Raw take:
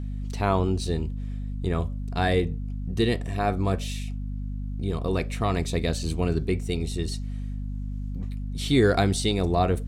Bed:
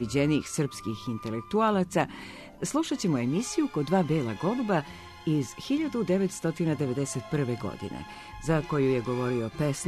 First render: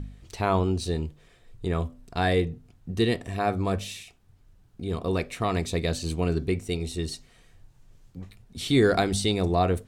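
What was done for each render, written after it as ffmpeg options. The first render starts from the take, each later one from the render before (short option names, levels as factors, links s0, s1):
-af "bandreject=f=50:t=h:w=4,bandreject=f=100:t=h:w=4,bandreject=f=150:t=h:w=4,bandreject=f=200:t=h:w=4,bandreject=f=250:t=h:w=4"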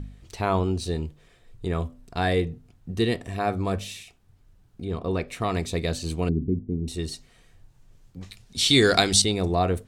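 -filter_complex "[0:a]asettb=1/sr,asplit=3[s0][s1][s2];[s0]atrim=end=4.854[s3];[s1]atrim=start=4.85:end=5.28,asetpts=PTS-STARTPTS,afade=t=in:d=0.004:c=qsin,afade=t=out:st=0.426:d=0.004:c=qsin,aemphasis=mode=reproduction:type=50kf[s4];[s2]atrim=start=5.276[s5];[s3][s4]acrossfade=d=0.004:c1=hsin:c2=qsin[s6];[s6][s5]acrossfade=d=0.004:c1=qsin:c2=hsin,asettb=1/sr,asplit=3[s7][s8][s9];[s7]atrim=end=6.294[s10];[s8]atrim=start=6.29:end=6.88,asetpts=PTS-STARTPTS,afade=t=in:d=0.004:c=qsin,afade=t=out:st=0.586:d=0.004:c=qsin,lowpass=f=250:t=q:w=2[s11];[s9]atrim=start=6.876[s12];[s10][s11]acrossfade=d=0.004:c1=hsin:c2=qsin[s13];[s13][s12]acrossfade=d=0.004:c1=qsin:c2=hsin,asettb=1/sr,asplit=3[s14][s15][s16];[s14]atrim=end=8.214[s17];[s15]atrim=start=8.21:end=9.22,asetpts=PTS-STARTPTS,afade=t=in:d=0.004:c=qsin,afade=t=out:st=1.006:d=0.004:c=qsin,equalizer=f=5300:w=0.44:g=14[s18];[s16]atrim=start=9.216[s19];[s17][s18]acrossfade=d=0.004:c1=hsin:c2=qsin[s20];[s20][s19]acrossfade=d=0.004:c1=qsin:c2=hsin"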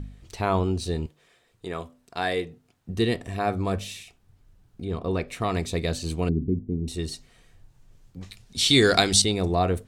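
-filter_complex "[0:a]asettb=1/sr,asplit=3[s0][s1][s2];[s0]atrim=end=1.064[s3];[s1]atrim=start=1.06:end=2.89,asetpts=PTS-STARTPTS,afade=t=in:d=0.004:c=qsin,afade=t=out:st=1.826:d=0.004:c=qsin,highpass=f=470:p=1[s4];[s2]atrim=start=2.886[s5];[s3][s4]acrossfade=d=0.004:c1=hsin:c2=qsin[s6];[s6][s5]acrossfade=d=0.004:c1=qsin:c2=hsin"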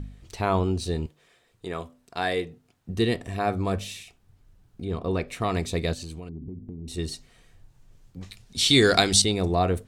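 -filter_complex "[0:a]asplit=3[s0][s1][s2];[s0]afade=t=out:st=5.93:d=0.02[s3];[s1]acompressor=threshold=0.0224:ratio=12:attack=3.2:release=140:knee=1:detection=peak,afade=t=in:st=5.93:d=0.02,afade=t=out:st=6.96:d=0.02[s4];[s2]afade=t=in:st=6.96:d=0.02[s5];[s3][s4][s5]amix=inputs=3:normalize=0"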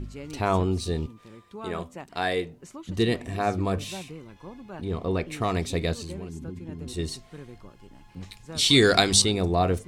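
-filter_complex "[1:a]volume=0.178[s0];[0:a][s0]amix=inputs=2:normalize=0"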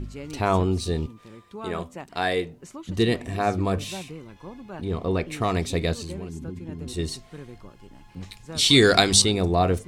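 -af "volume=1.26"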